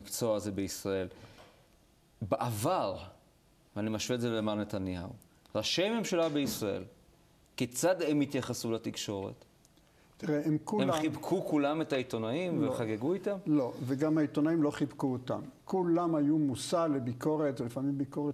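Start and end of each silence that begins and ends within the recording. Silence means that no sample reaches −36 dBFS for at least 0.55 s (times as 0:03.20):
0:01.07–0:02.22
0:03.01–0:03.77
0:06.83–0:07.58
0:09.31–0:10.23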